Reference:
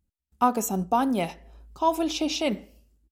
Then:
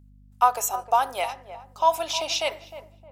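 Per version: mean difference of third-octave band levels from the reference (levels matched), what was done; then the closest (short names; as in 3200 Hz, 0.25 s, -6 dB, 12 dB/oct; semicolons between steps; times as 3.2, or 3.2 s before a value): 6.5 dB: HPF 620 Hz 24 dB/oct; hum 50 Hz, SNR 26 dB; darkening echo 0.309 s, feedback 39%, low-pass 920 Hz, level -11 dB; gain +4 dB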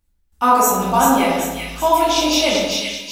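9.5 dB: bell 170 Hz -13.5 dB 2.7 oct; split-band echo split 1900 Hz, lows 89 ms, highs 0.387 s, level -3.5 dB; shoebox room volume 250 m³, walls mixed, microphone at 2.4 m; gain +5.5 dB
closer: first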